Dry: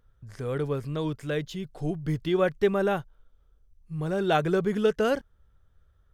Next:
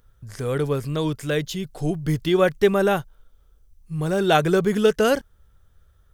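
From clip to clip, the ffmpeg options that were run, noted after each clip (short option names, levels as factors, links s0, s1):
-af "highshelf=f=5100:g=10.5,volume=1.88"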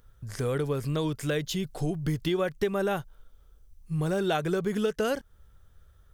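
-af "acompressor=threshold=0.0562:ratio=5"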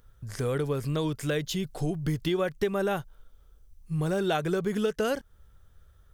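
-af anull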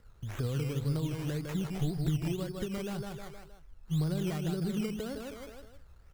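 -filter_complex "[0:a]aecho=1:1:156|312|468|624:0.501|0.185|0.0686|0.0254,acrossover=split=230[s0][s1];[s1]acompressor=threshold=0.00891:ratio=6[s2];[s0][s2]amix=inputs=2:normalize=0,acrusher=samples=13:mix=1:aa=0.000001:lfo=1:lforange=7.8:lforate=1.9"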